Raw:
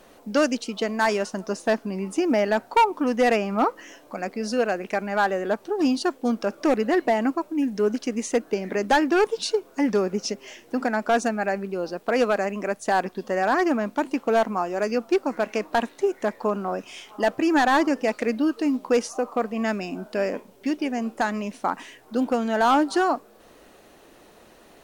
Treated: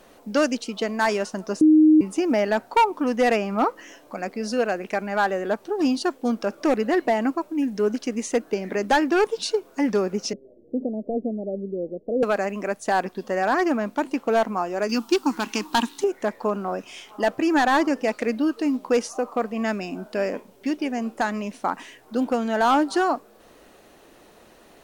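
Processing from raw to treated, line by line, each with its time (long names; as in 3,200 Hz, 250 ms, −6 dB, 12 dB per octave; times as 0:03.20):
0:01.61–0:02.01: beep over 310 Hz −10.5 dBFS
0:10.33–0:12.23: Butterworth low-pass 580 Hz 48 dB per octave
0:14.89–0:16.04: drawn EQ curve 160 Hz 0 dB, 300 Hz +7 dB, 600 Hz −16 dB, 880 Hz +6 dB, 2,100 Hz −2 dB, 3,100 Hz +10 dB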